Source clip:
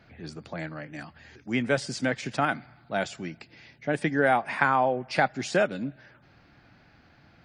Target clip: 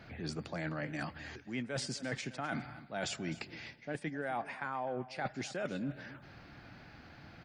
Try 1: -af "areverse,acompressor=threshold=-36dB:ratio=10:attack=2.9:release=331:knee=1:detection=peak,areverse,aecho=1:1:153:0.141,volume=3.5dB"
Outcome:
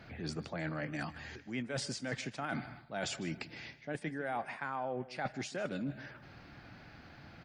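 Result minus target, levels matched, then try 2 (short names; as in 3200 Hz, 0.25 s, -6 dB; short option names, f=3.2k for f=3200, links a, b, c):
echo 0.102 s early
-af "areverse,acompressor=threshold=-36dB:ratio=10:attack=2.9:release=331:knee=1:detection=peak,areverse,aecho=1:1:255:0.141,volume=3.5dB"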